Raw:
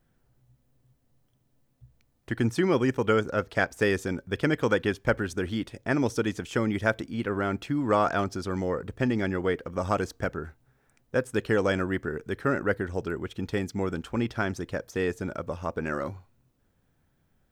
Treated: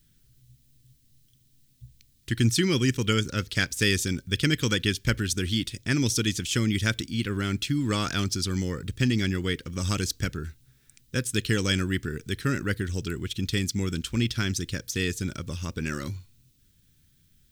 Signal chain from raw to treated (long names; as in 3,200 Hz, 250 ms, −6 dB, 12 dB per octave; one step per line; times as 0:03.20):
drawn EQ curve 120 Hz 0 dB, 350 Hz −8 dB, 700 Hz −23 dB, 3,700 Hz +8 dB
level +6.5 dB